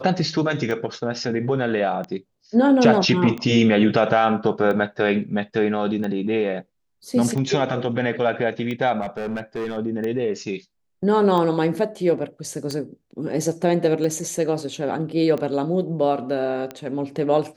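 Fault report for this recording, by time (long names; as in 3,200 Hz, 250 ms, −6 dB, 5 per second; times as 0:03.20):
scratch tick 45 rpm −17 dBFS
0:09.01–0:09.78: clipping −23 dBFS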